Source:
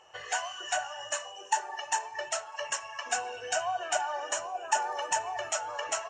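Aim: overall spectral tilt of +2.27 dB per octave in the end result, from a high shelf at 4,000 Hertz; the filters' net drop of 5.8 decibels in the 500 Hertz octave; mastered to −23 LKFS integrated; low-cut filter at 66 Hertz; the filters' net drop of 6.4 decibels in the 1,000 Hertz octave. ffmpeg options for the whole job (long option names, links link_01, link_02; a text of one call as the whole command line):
ffmpeg -i in.wav -af "highpass=66,equalizer=frequency=500:width_type=o:gain=-5,equalizer=frequency=1000:width_type=o:gain=-6.5,highshelf=frequency=4000:gain=3.5,volume=10.5dB" out.wav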